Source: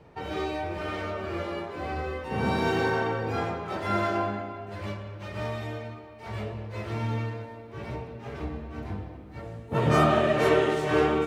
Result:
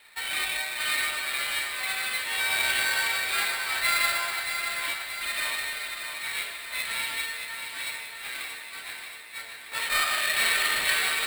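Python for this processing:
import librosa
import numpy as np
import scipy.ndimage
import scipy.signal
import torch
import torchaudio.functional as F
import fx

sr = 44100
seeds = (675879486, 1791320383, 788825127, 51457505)

p1 = fx.over_compress(x, sr, threshold_db=-28.0, ratio=-1.0)
p2 = x + (p1 * librosa.db_to_amplitude(0.0))
p3 = fx.highpass_res(p2, sr, hz=2100.0, q=2.7)
p4 = fx.sample_hold(p3, sr, seeds[0], rate_hz=6100.0, jitter_pct=0)
y = p4 + fx.echo_feedback(p4, sr, ms=627, feedback_pct=59, wet_db=-7, dry=0)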